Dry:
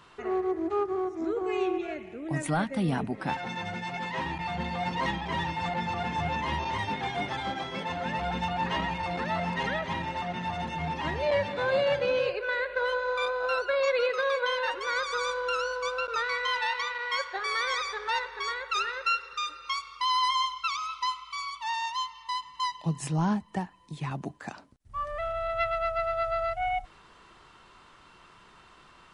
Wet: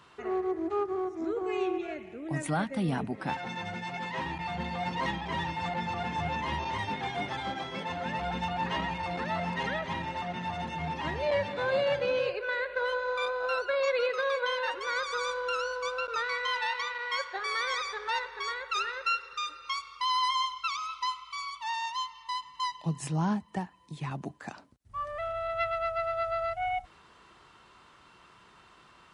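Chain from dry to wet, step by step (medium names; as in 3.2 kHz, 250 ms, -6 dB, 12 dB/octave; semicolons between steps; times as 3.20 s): high-pass 50 Hz; trim -2 dB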